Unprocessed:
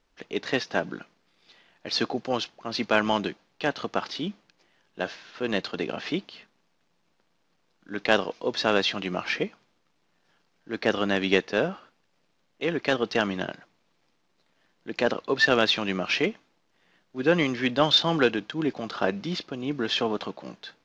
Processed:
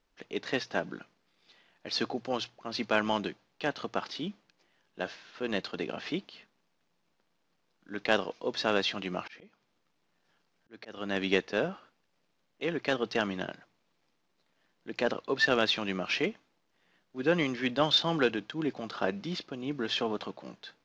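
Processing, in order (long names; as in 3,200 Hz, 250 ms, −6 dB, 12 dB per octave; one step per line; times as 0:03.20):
mains-hum notches 60/120 Hz
0:09.20–0:11.16: volume swells 367 ms
level −5 dB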